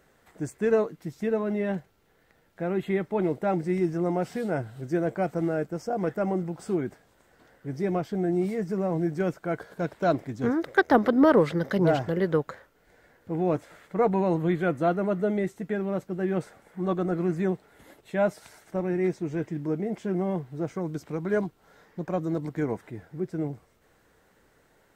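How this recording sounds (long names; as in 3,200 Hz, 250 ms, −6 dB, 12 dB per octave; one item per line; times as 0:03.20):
background noise floor −64 dBFS
spectral slope −5.0 dB per octave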